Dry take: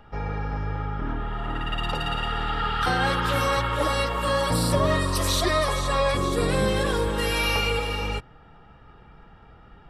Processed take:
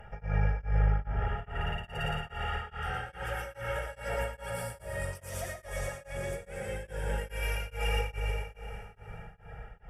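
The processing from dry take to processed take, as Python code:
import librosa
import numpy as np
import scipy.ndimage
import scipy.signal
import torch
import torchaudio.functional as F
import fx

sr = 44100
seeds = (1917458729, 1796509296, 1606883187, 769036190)

y = fx.dereverb_blind(x, sr, rt60_s=0.55)
y = fx.over_compress(y, sr, threshold_db=-32.0, ratio=-1.0)
y = fx.tube_stage(y, sr, drive_db=18.0, bias=0.25)
y = fx.fixed_phaser(y, sr, hz=1100.0, stages=6)
y = fx.echo_feedback(y, sr, ms=117, feedback_pct=56, wet_db=-3.5)
y = fx.rev_plate(y, sr, seeds[0], rt60_s=4.1, hf_ratio=0.75, predelay_ms=0, drr_db=5.0)
y = y * np.abs(np.cos(np.pi * 2.4 * np.arange(len(y)) / sr))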